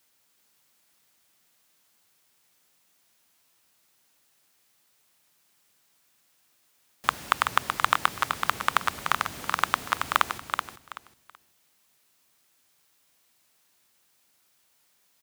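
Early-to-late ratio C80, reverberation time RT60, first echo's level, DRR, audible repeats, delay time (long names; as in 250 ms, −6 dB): no reverb audible, no reverb audible, −6.0 dB, no reverb audible, 3, 379 ms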